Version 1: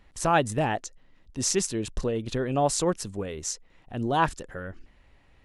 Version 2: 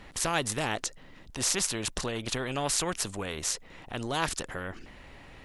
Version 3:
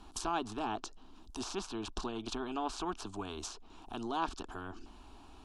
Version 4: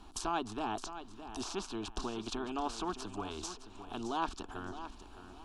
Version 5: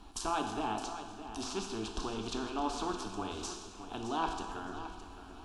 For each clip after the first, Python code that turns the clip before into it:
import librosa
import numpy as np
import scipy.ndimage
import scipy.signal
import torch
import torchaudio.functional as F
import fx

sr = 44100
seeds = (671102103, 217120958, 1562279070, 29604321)

y1 = fx.spectral_comp(x, sr, ratio=2.0)
y2 = fx.env_lowpass_down(y1, sr, base_hz=2700.0, full_db=-27.5)
y2 = fx.fixed_phaser(y2, sr, hz=530.0, stages=6)
y2 = F.gain(torch.from_numpy(y2), -1.5).numpy()
y3 = fx.echo_feedback(y2, sr, ms=615, feedback_pct=29, wet_db=-11.5)
y4 = fx.rev_plate(y3, sr, seeds[0], rt60_s=1.4, hf_ratio=0.9, predelay_ms=0, drr_db=3.0)